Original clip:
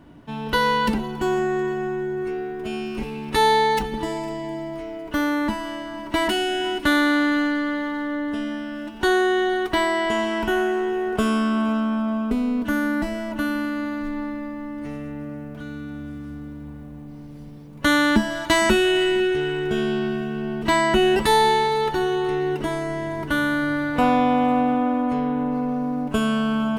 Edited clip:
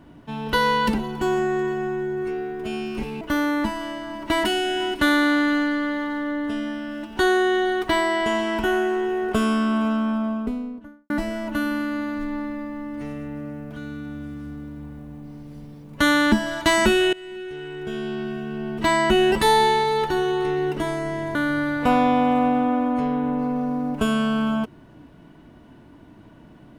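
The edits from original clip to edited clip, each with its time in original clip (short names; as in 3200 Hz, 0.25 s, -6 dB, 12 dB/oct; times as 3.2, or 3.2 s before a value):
3.21–5.05 cut
11.91–12.94 studio fade out
18.97–20.9 fade in, from -22 dB
23.19–23.48 cut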